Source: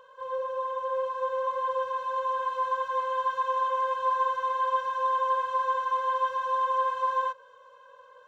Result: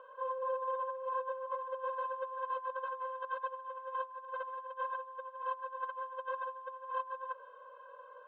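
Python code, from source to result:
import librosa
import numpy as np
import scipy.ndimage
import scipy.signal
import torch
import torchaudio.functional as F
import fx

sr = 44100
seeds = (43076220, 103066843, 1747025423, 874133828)

y = fx.over_compress(x, sr, threshold_db=-33.0, ratio=-0.5)
y = fx.cabinet(y, sr, low_hz=210.0, low_slope=12, high_hz=2700.0, hz=(210.0, 340.0, 680.0, 1300.0, 2000.0), db=(-8, 6, 8, 6, -8))
y = y + 10.0 ** (-23.5 / 20.0) * np.pad(y, (int(485 * sr / 1000.0), 0))[:len(y)]
y = y * librosa.db_to_amplitude(-7.5)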